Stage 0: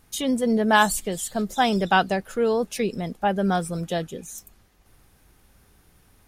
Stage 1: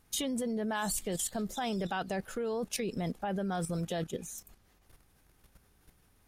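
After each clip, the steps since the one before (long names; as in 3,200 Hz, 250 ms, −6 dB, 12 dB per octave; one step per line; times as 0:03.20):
brickwall limiter −17.5 dBFS, peak gain reduction 11.5 dB
output level in coarse steps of 11 dB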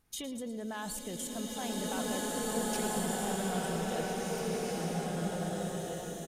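repeating echo 112 ms, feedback 55%, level −13 dB
slow-attack reverb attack 2,000 ms, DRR −6.5 dB
level −6.5 dB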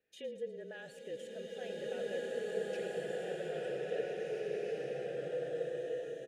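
formant filter e
frequency shifter −31 Hz
level +6.5 dB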